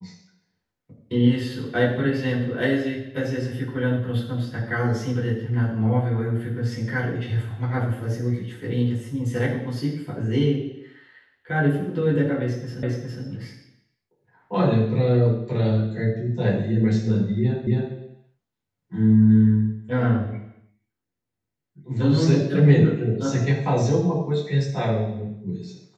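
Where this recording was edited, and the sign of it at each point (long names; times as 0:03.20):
0:12.83: the same again, the last 0.41 s
0:17.67: the same again, the last 0.27 s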